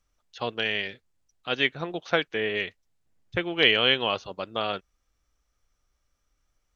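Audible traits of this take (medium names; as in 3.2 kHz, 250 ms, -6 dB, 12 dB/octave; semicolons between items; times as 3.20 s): noise floor -76 dBFS; spectral tilt -0.5 dB/octave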